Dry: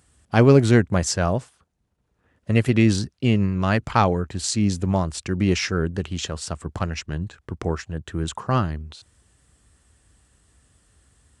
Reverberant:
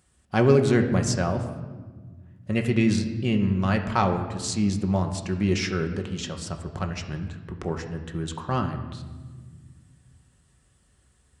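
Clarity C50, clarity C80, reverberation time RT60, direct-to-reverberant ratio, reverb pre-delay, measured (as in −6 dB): 9.0 dB, 10.5 dB, 1.5 s, 4.0 dB, 5 ms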